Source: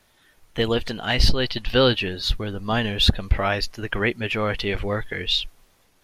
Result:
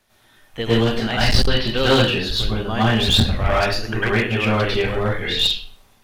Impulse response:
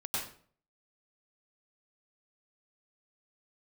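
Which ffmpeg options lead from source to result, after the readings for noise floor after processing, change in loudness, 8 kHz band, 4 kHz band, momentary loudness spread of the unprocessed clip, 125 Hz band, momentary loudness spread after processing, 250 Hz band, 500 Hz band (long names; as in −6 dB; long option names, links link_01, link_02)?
−56 dBFS, +4.0 dB, +6.0 dB, +4.0 dB, 8 LU, +5.5 dB, 6 LU, +5.5 dB, +3.5 dB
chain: -filter_complex "[1:a]atrim=start_sample=2205,asetrate=43218,aresample=44100[link_01];[0:a][link_01]afir=irnorm=-1:irlink=0,aeval=exprs='clip(val(0),-1,0.168)':channel_layout=same,bandreject=frequency=50:width_type=h:width=6,bandreject=frequency=100:width_type=h:width=6,bandreject=frequency=150:width_type=h:width=6,bandreject=frequency=200:width_type=h:width=6,volume=1dB"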